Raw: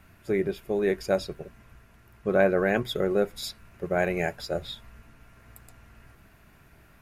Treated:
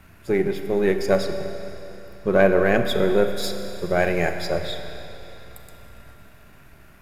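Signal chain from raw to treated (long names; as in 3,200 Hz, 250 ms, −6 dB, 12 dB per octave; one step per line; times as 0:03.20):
gain on one half-wave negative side −3 dB
four-comb reverb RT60 3.3 s, combs from 31 ms, DRR 7 dB
level +6 dB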